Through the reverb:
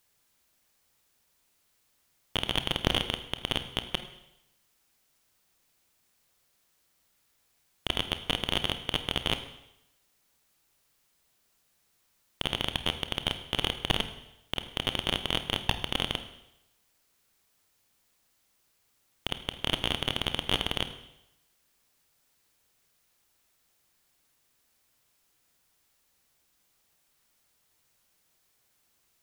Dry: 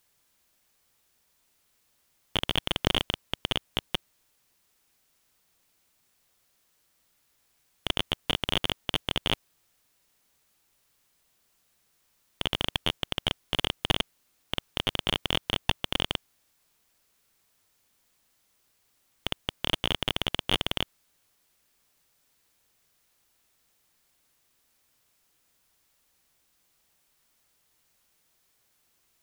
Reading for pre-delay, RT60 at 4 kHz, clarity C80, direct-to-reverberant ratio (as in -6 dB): 25 ms, 0.85 s, 13.5 dB, 9.0 dB